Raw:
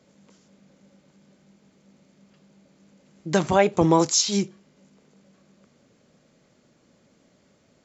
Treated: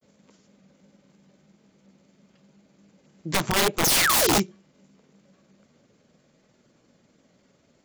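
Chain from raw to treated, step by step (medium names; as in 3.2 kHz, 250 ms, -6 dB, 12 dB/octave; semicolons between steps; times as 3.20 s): painted sound fall, 3.85–4.38 s, 210–7000 Hz -19 dBFS; granulator 100 ms, grains 20 per s, spray 18 ms, pitch spread up and down by 0 st; integer overflow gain 15 dB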